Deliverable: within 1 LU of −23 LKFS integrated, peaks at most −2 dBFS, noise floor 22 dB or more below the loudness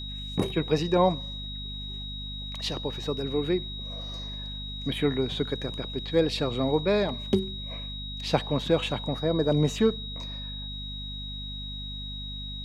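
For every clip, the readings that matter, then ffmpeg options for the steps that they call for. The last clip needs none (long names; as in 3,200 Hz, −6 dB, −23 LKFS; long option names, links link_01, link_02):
mains hum 50 Hz; hum harmonics up to 250 Hz; level of the hum −36 dBFS; interfering tone 3,800 Hz; level of the tone −37 dBFS; integrated loudness −29.0 LKFS; sample peak −7.5 dBFS; target loudness −23.0 LKFS
→ -af "bandreject=frequency=50:width_type=h:width=6,bandreject=frequency=100:width_type=h:width=6,bandreject=frequency=150:width_type=h:width=6,bandreject=frequency=200:width_type=h:width=6,bandreject=frequency=250:width_type=h:width=6"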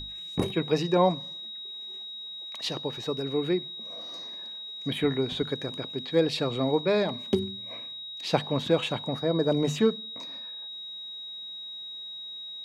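mains hum none found; interfering tone 3,800 Hz; level of the tone −37 dBFS
→ -af "bandreject=frequency=3800:width=30"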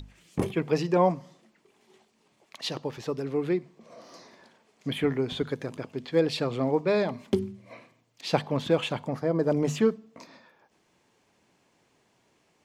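interfering tone none found; integrated loudness −28.5 LKFS; sample peak −8.0 dBFS; target loudness −23.0 LKFS
→ -af "volume=5.5dB"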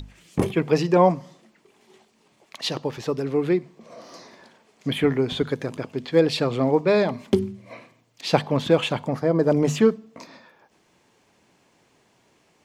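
integrated loudness −23.0 LKFS; sample peak −2.5 dBFS; background noise floor −63 dBFS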